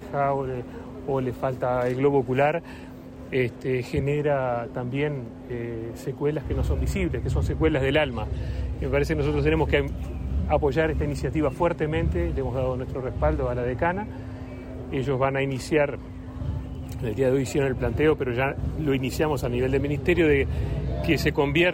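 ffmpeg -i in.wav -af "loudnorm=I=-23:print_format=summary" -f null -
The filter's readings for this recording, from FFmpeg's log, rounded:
Input Integrated:    -25.2 LUFS
Input True Peak:     -10.2 dBTP
Input LRA:             4.3 LU
Input Threshold:     -35.4 LUFS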